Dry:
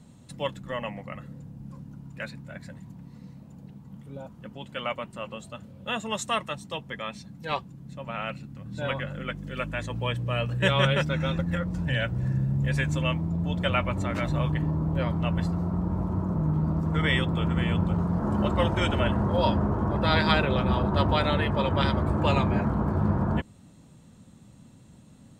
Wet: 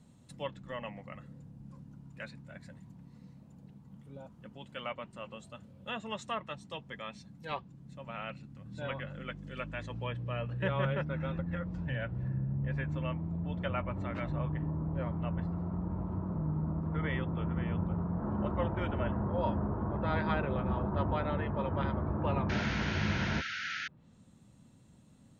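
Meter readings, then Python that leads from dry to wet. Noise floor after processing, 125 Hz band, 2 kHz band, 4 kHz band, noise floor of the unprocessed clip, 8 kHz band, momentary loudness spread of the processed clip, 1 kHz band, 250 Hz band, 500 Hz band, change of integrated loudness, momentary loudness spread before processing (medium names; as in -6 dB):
-59 dBFS, -8.0 dB, -8.5 dB, -12.5 dB, -52 dBFS, under -10 dB, 18 LU, -8.5 dB, -8.0 dB, -8.0 dB, -8.5 dB, 19 LU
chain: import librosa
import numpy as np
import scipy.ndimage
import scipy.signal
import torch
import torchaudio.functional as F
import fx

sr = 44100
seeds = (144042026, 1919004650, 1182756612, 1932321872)

y = fx.spec_paint(x, sr, seeds[0], shape='noise', start_s=22.49, length_s=1.39, low_hz=1300.0, high_hz=6800.0, level_db=-21.0)
y = fx.env_lowpass_down(y, sr, base_hz=1700.0, full_db=-22.0)
y = F.gain(torch.from_numpy(y), -8.0).numpy()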